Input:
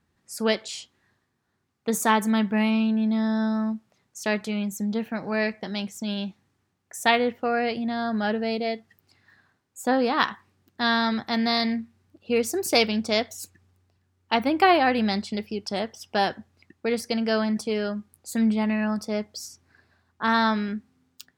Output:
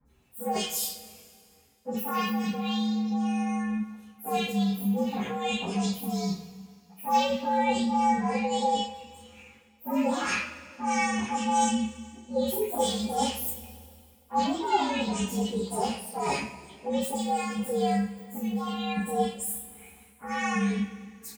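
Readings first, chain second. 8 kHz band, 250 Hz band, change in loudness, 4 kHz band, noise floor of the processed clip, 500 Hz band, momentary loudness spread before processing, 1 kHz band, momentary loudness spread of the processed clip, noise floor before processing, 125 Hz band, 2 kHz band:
+1.5 dB, -3.5 dB, -3.5 dB, -5.0 dB, -59 dBFS, -5.0 dB, 11 LU, -0.5 dB, 13 LU, -73 dBFS, +0.5 dB, -7.0 dB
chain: frequency axis rescaled in octaves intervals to 118%; reverse; compression 6:1, threshold -37 dBFS, peak gain reduction 19 dB; reverse; three bands offset in time lows, highs, mids 50/80 ms, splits 1.4/5.6 kHz; two-slope reverb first 0.32 s, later 2.2 s, from -20 dB, DRR -9.5 dB; trim +2.5 dB

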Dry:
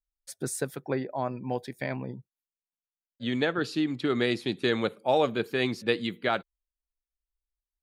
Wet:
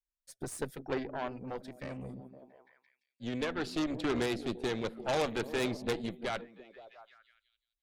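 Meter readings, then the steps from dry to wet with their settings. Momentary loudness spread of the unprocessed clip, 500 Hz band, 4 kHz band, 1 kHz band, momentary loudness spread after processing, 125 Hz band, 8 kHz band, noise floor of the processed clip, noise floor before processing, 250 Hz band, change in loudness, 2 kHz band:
9 LU, -6.5 dB, -7.0 dB, -6.5 dB, 17 LU, -6.5 dB, -5.5 dB, under -85 dBFS, under -85 dBFS, -6.0 dB, -6.5 dB, -7.5 dB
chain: repeats whose band climbs or falls 171 ms, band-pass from 210 Hz, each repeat 0.7 oct, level -10 dB; rotary cabinet horn 0.7 Hz; Chebyshev shaper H 5 -16 dB, 6 -9 dB, 8 -7 dB, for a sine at -13 dBFS; trim -9 dB

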